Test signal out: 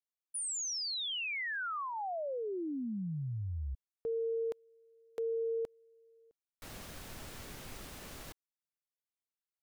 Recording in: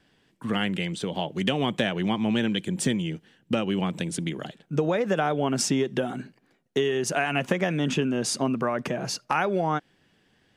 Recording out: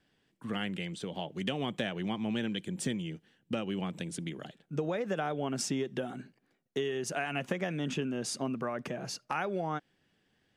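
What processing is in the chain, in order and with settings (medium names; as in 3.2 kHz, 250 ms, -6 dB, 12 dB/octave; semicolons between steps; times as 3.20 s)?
peaking EQ 970 Hz -2.5 dB 0.22 oct; trim -8.5 dB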